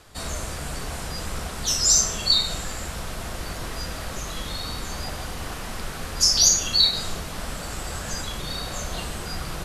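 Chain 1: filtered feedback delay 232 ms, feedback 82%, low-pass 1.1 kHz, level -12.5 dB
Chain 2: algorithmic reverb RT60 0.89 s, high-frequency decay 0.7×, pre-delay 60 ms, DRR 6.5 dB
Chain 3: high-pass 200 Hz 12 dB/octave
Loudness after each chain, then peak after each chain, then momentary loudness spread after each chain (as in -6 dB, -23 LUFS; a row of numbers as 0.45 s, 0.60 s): -24.0 LUFS, -23.5 LUFS, -23.5 LUFS; -3.0 dBFS, -2.5 dBFS, -3.0 dBFS; 16 LU, 16 LU, 17 LU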